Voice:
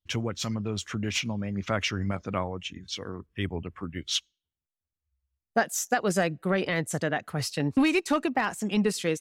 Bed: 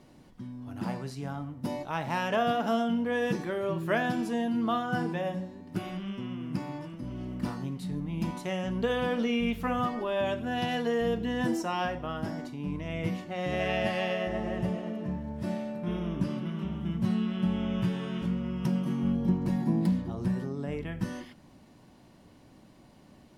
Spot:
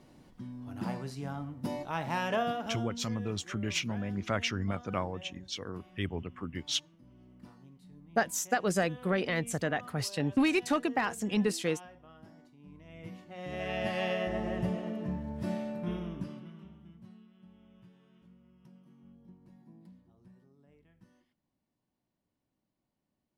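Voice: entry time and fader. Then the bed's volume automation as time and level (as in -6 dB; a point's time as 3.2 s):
2.60 s, -3.5 dB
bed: 2.33 s -2 dB
3.21 s -20 dB
12.59 s -20 dB
14.06 s -1.5 dB
15.83 s -1.5 dB
17.29 s -29 dB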